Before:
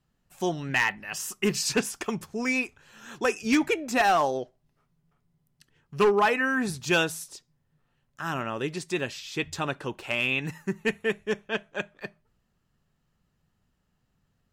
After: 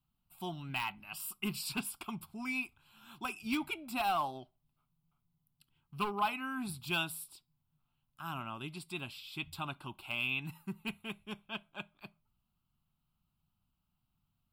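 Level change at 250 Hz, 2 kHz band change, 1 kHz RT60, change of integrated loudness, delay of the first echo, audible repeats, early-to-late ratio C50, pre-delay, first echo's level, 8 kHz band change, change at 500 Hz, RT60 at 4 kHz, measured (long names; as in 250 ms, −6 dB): −11.5 dB, −11.5 dB, no reverb audible, −11.0 dB, no echo audible, no echo audible, no reverb audible, no reverb audible, no echo audible, −12.0 dB, −19.0 dB, no reverb audible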